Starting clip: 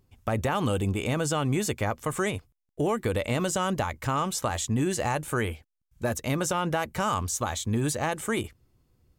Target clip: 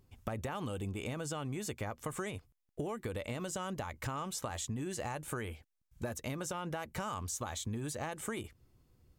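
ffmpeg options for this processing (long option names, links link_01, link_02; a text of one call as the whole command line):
ffmpeg -i in.wav -af "acompressor=threshold=-35dB:ratio=6,volume=-1dB" out.wav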